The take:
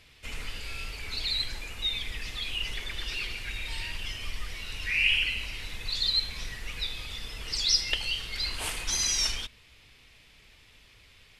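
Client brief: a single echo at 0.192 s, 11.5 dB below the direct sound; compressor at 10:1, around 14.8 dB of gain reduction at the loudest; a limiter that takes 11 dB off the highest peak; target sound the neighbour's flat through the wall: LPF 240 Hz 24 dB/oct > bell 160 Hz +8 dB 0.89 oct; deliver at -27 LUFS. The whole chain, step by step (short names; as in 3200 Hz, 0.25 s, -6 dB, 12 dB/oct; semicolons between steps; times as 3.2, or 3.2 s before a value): compressor 10:1, threshold -35 dBFS; limiter -31 dBFS; LPF 240 Hz 24 dB/oct; bell 160 Hz +8 dB 0.89 oct; echo 0.192 s -11.5 dB; gain +23.5 dB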